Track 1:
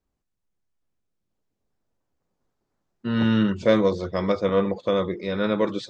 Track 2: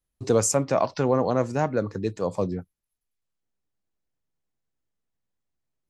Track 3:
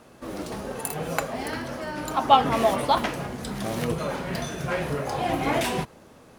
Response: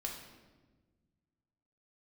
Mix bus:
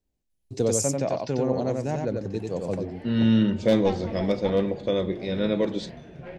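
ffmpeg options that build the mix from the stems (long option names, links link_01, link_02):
-filter_complex "[0:a]volume=10.5dB,asoftclip=hard,volume=-10.5dB,volume=-2dB,asplit=2[link_01][link_02];[link_02]volume=-9dB[link_03];[1:a]adelay=300,volume=-2.5dB,asplit=2[link_04][link_05];[link_05]volume=-3.5dB[link_06];[2:a]lowpass=2200,aeval=exprs='(tanh(4.47*val(0)+0.45)-tanh(0.45))/4.47':channel_layout=same,adelay=1550,volume=-8.5dB[link_07];[3:a]atrim=start_sample=2205[link_08];[link_03][link_08]afir=irnorm=-1:irlink=0[link_09];[link_06]aecho=0:1:92:1[link_10];[link_01][link_04][link_07][link_09][link_10]amix=inputs=5:normalize=0,equalizer=frequency=1200:width_type=o:width=0.9:gain=-13"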